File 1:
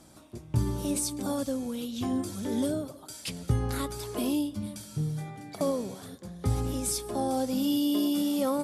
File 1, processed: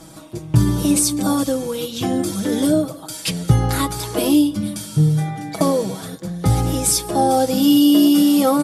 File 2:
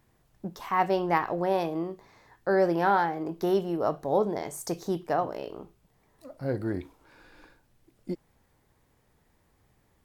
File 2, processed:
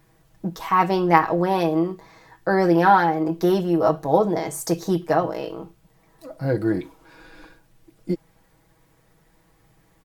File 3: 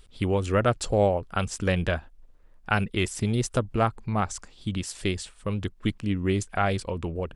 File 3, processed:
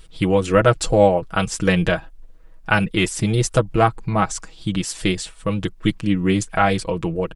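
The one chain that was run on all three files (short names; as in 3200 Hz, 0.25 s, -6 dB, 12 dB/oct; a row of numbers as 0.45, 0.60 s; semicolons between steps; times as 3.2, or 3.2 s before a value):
comb 6.2 ms, depth 73%; normalise peaks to -1.5 dBFS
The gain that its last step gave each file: +11.5, +6.0, +6.0 dB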